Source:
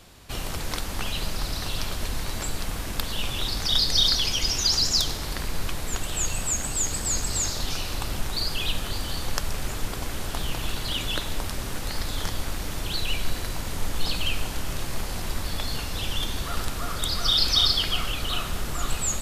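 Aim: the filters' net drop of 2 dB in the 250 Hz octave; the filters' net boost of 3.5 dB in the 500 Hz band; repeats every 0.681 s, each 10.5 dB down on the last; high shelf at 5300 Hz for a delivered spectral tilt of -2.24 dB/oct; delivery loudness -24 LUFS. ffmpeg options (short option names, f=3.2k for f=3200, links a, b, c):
-af "equalizer=f=250:t=o:g=-4.5,equalizer=f=500:t=o:g=5.5,highshelf=f=5.3k:g=5,aecho=1:1:681|1362|2043:0.299|0.0896|0.0269,volume=0.5dB"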